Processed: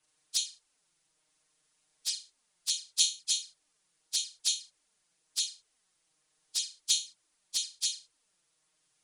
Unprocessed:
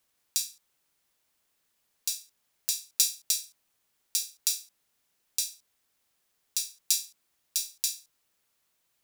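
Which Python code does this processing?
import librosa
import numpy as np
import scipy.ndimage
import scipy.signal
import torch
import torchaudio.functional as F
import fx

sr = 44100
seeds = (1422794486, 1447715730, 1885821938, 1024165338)

y = fx.freq_compress(x, sr, knee_hz=2300.0, ratio=1.5)
y = y + 0.37 * np.pad(y, (int(6.5 * sr / 1000.0), 0))[:len(y)]
y = fx.env_flanger(y, sr, rest_ms=6.6, full_db=-27.0)
y = y * 10.0 ** (2.5 / 20.0)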